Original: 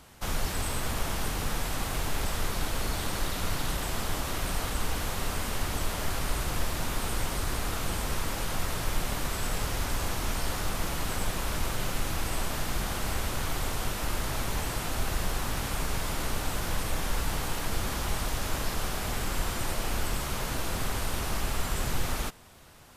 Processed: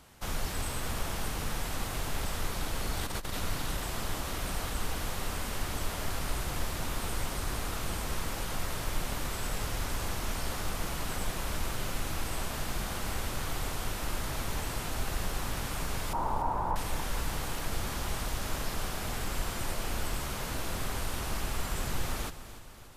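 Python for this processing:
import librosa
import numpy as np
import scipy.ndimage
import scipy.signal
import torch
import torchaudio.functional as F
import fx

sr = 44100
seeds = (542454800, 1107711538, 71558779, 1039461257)

p1 = fx.lowpass_res(x, sr, hz=930.0, q=7.6, at=(16.13, 16.76))
p2 = p1 + fx.echo_feedback(p1, sr, ms=289, feedback_pct=56, wet_db=-14.0, dry=0)
p3 = fx.over_compress(p2, sr, threshold_db=-30.0, ratio=-0.5, at=(2.97, 3.39))
y = p3 * 10.0 ** (-3.5 / 20.0)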